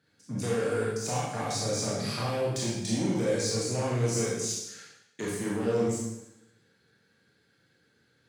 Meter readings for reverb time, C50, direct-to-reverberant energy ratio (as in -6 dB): 0.90 s, -1.0 dB, -6.0 dB